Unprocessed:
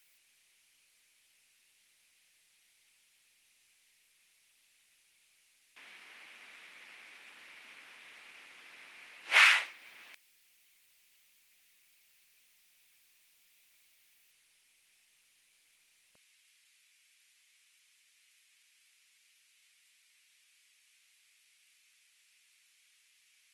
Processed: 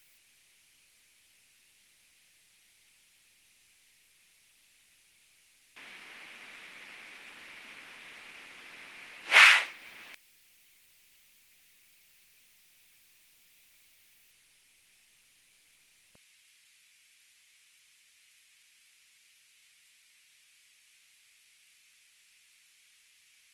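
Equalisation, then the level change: bass shelf 290 Hz +9 dB; +4.5 dB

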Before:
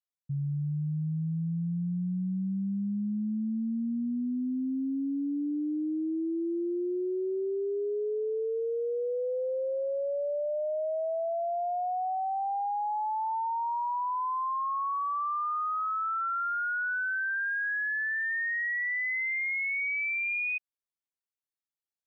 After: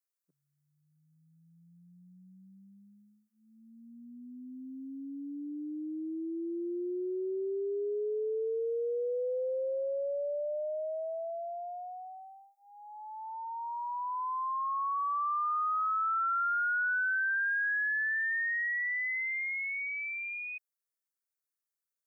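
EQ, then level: brick-wall FIR high-pass 190 Hz; tilt EQ +1.5 dB/octave; static phaser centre 800 Hz, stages 6; 0.0 dB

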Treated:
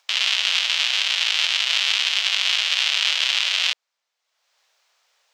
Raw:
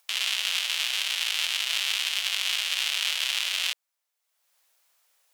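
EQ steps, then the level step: distance through air 190 m; tone controls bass -12 dB, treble +10 dB; +8.0 dB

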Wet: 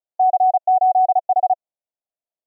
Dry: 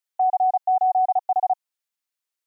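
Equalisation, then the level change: resonant low-pass 670 Hz, resonance Q 4.9; distance through air 460 m; -3.5 dB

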